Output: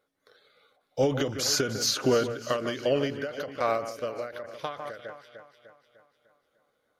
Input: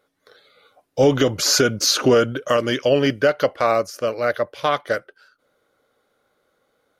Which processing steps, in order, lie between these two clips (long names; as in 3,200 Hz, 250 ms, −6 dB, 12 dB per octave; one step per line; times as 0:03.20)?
delay that swaps between a low-pass and a high-pass 150 ms, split 2,300 Hz, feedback 70%, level −11 dB
every ending faded ahead of time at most 110 dB per second
level −8 dB